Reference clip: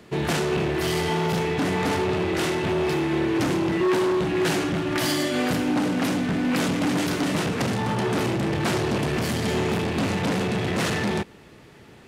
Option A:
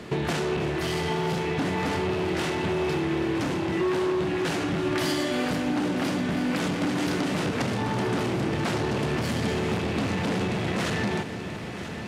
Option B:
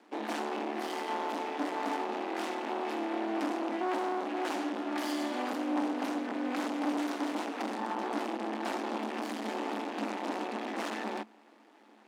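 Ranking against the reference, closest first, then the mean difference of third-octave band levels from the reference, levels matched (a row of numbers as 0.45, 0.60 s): A, B; 2.5, 7.5 dB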